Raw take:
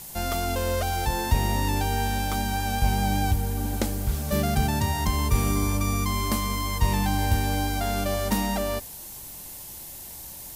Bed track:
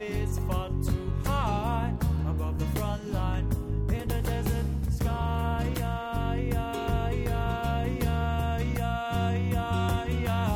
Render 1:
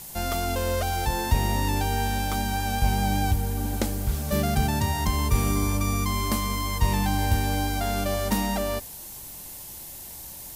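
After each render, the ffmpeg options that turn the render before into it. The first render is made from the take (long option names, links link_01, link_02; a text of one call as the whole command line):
ffmpeg -i in.wav -af anull out.wav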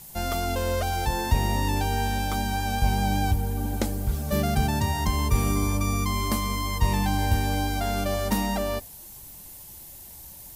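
ffmpeg -i in.wav -af "afftdn=noise_reduction=6:noise_floor=-41" out.wav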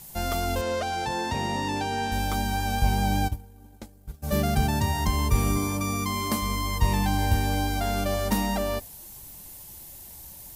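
ffmpeg -i in.wav -filter_complex "[0:a]asettb=1/sr,asplit=3[link_01][link_02][link_03];[link_01]atrim=end=0.614[link_04];[link_02]atrim=start=0.61:end=2.12,asetpts=PTS-STARTPTS,afade=type=in:duration=0.004:curve=qsin,afade=type=out:start_time=1.506:duration=0.004:curve=qsin,highpass=150,lowpass=6900[link_05];[link_03]atrim=start=2.116[link_06];[link_04][link_05]acrossfade=duration=0.004:curve1=hsin:curve2=qsin[link_07];[link_07][link_06]acrossfade=duration=0.004:curve1=qsin:curve2=hsin,asplit=3[link_08][link_09][link_10];[link_08]afade=type=out:start_time=3.27:duration=0.02[link_11];[link_09]agate=range=-33dB:threshold=-14dB:ratio=3:release=100:detection=peak,afade=type=in:start_time=3.27:duration=0.02,afade=type=out:start_time=4.22:duration=0.02[link_12];[link_10]afade=type=in:start_time=4.22:duration=0.02[link_13];[link_11][link_12][link_13]amix=inputs=3:normalize=0,asettb=1/sr,asplit=3[link_14][link_15][link_16];[link_14]atrim=end=5.574[link_17];[link_15]atrim=start=5.57:end=6.42,asetpts=PTS-STARTPTS,afade=type=in:duration=0.004:curve=qsin,afade=type=out:start_time=0.846:duration=0.004:curve=qsin,highpass=110[link_18];[link_16]atrim=start=6.416[link_19];[link_17][link_18]acrossfade=duration=0.004:curve1=hsin:curve2=qsin[link_20];[link_20][link_19]acrossfade=duration=0.004:curve1=qsin:curve2=hsin" out.wav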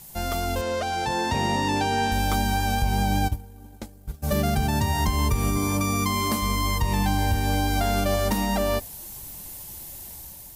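ffmpeg -i in.wav -af "dynaudnorm=framelen=720:gausssize=3:maxgain=5dB,alimiter=limit=-13.5dB:level=0:latency=1:release=206" out.wav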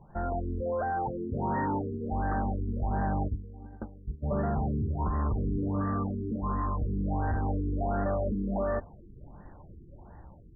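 ffmpeg -i in.wav -af "asoftclip=type=tanh:threshold=-25dB,afftfilt=real='re*lt(b*sr/1024,440*pow(2000/440,0.5+0.5*sin(2*PI*1.4*pts/sr)))':imag='im*lt(b*sr/1024,440*pow(2000/440,0.5+0.5*sin(2*PI*1.4*pts/sr)))':win_size=1024:overlap=0.75" out.wav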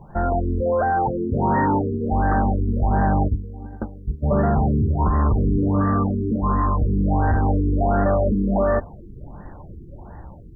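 ffmpeg -i in.wav -af "volume=10.5dB" out.wav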